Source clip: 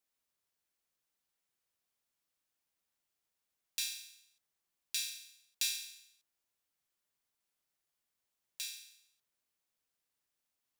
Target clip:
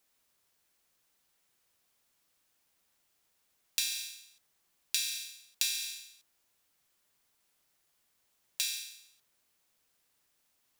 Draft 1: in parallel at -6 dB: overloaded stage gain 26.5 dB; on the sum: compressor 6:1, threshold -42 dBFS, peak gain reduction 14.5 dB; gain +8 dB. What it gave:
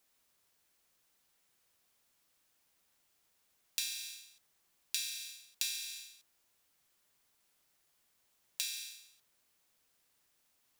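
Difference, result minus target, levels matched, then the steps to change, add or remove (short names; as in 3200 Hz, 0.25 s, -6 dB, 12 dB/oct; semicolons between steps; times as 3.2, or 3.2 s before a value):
compressor: peak gain reduction +5 dB
change: compressor 6:1, threshold -36 dBFS, peak gain reduction 9.5 dB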